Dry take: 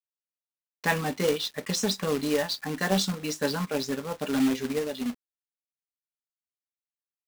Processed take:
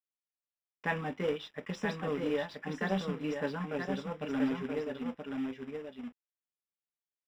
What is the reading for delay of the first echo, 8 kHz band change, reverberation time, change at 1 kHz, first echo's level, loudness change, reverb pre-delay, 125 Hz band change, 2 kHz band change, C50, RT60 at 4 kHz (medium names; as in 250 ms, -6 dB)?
977 ms, under -20 dB, no reverb, -6.0 dB, -5.0 dB, -7.5 dB, no reverb, -5.5 dB, -6.0 dB, no reverb, no reverb